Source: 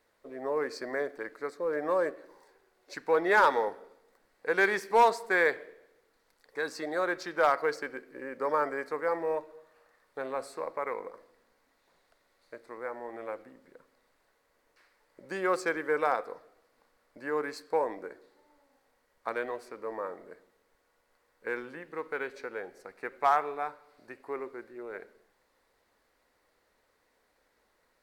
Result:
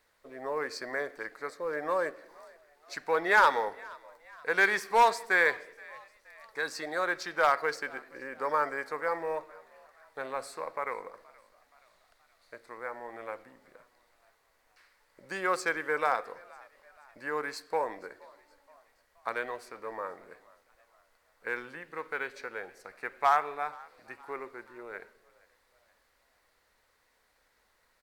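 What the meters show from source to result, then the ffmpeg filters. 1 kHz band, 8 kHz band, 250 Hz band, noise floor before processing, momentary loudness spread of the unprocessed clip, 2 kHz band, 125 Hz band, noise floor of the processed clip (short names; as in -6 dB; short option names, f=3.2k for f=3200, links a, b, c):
+0.5 dB, +3.5 dB, -4.5 dB, -73 dBFS, 17 LU, +2.5 dB, -1.5 dB, -71 dBFS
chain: -filter_complex "[0:a]equalizer=f=320:t=o:w=2.4:g=-8.5,asplit=2[a][b];[b]asplit=3[c][d][e];[c]adelay=474,afreqshift=66,volume=-24dB[f];[d]adelay=948,afreqshift=132,volume=-29.7dB[g];[e]adelay=1422,afreqshift=198,volume=-35.4dB[h];[f][g][h]amix=inputs=3:normalize=0[i];[a][i]amix=inputs=2:normalize=0,volume=3.5dB"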